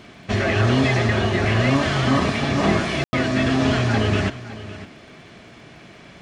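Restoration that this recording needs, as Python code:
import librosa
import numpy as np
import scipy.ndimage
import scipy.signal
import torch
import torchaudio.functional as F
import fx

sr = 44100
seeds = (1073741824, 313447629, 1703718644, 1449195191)

y = fx.fix_declick_ar(x, sr, threshold=6.5)
y = fx.fix_ambience(y, sr, seeds[0], print_start_s=5.65, print_end_s=6.15, start_s=3.04, end_s=3.13)
y = fx.fix_echo_inverse(y, sr, delay_ms=558, level_db=-15.5)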